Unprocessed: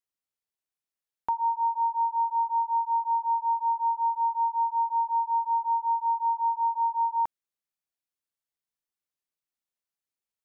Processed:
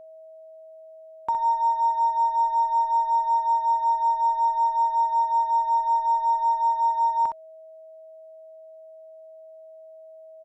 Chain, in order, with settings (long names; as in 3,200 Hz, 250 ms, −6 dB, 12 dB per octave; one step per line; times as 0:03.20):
harmonic generator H 8 −37 dB, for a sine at −20 dBFS
ambience of single reflections 50 ms −15.5 dB, 63 ms −7 dB
steady tone 640 Hz −45 dBFS
level +2 dB